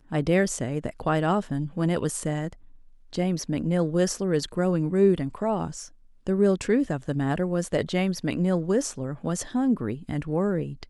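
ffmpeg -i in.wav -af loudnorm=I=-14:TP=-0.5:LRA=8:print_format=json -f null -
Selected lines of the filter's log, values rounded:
"input_i" : "-26.2",
"input_tp" : "-9.4",
"input_lra" : "2.2",
"input_thresh" : "-36.5",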